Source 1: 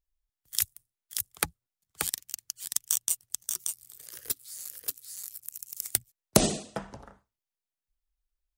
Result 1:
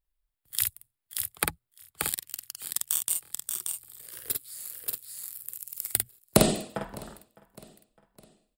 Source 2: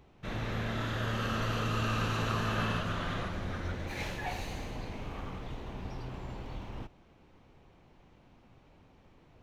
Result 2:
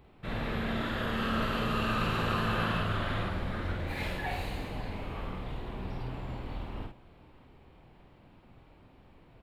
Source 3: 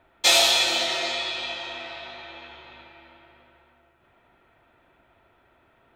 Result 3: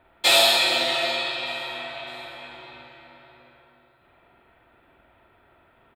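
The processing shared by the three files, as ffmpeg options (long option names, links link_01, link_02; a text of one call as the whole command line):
ffmpeg -i in.wav -filter_complex "[0:a]equalizer=frequency=6100:width=3.5:gain=-14.5,asplit=2[link_01][link_02];[link_02]adelay=49,volume=-3.5dB[link_03];[link_01][link_03]amix=inputs=2:normalize=0,asplit=2[link_04][link_05];[link_05]aecho=0:1:608|1216|1824:0.0708|0.0347|0.017[link_06];[link_04][link_06]amix=inputs=2:normalize=0,volume=1dB" out.wav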